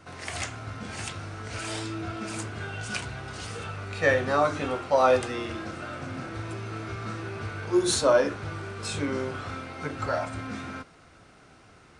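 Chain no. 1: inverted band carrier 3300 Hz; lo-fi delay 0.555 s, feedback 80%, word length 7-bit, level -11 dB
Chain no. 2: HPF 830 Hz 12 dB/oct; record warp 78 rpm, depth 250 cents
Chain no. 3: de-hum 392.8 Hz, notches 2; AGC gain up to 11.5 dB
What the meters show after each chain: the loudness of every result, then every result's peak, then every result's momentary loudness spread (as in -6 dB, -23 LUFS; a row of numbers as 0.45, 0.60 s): -26.0, -33.5, -20.5 LUFS; -8.5, -12.0, -1.5 dBFS; 15, 15, 13 LU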